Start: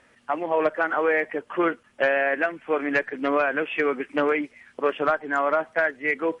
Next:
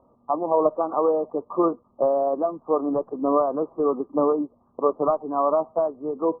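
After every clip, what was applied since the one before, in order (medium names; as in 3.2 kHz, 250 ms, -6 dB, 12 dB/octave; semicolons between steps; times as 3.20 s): Chebyshev low-pass 1.2 kHz, order 8; trim +3 dB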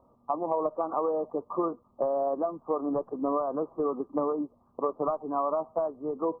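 peaking EQ 370 Hz -4 dB 2.8 oct; compression, threshold -24 dBFS, peak gain reduction 7 dB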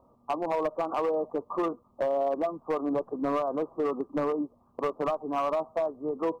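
overload inside the chain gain 23 dB; trim +1 dB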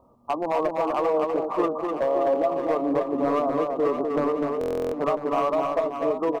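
reverse bouncing-ball echo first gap 250 ms, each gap 1.3×, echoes 5; buffer glitch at 4.59 s, samples 1024, times 14; trim +3.5 dB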